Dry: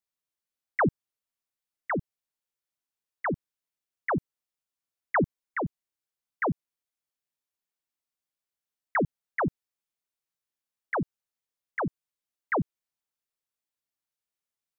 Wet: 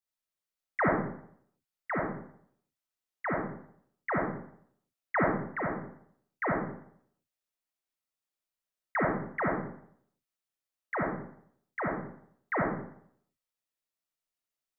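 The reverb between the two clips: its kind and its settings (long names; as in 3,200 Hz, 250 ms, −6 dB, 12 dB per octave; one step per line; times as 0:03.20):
comb and all-pass reverb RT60 0.65 s, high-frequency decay 0.7×, pre-delay 15 ms, DRR −2.5 dB
level −5 dB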